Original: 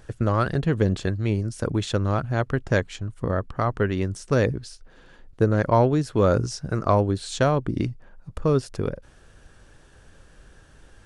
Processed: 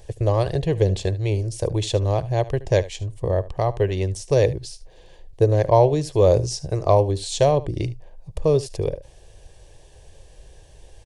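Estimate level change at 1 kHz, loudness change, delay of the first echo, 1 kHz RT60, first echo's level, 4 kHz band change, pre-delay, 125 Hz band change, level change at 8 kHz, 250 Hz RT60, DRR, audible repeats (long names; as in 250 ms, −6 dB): +1.0 dB, +2.5 dB, 74 ms, no reverb audible, −18.0 dB, +4.0 dB, no reverb audible, +2.0 dB, +5.0 dB, no reverb audible, no reverb audible, 1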